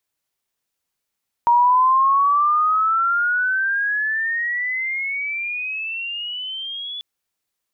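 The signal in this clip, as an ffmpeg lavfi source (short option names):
-f lavfi -i "aevalsrc='pow(10,(-11-16.5*t/5.54)/20)*sin(2*PI*941*5.54/(22.5*log(2)/12)*(exp(22.5*log(2)/12*t/5.54)-1))':d=5.54:s=44100"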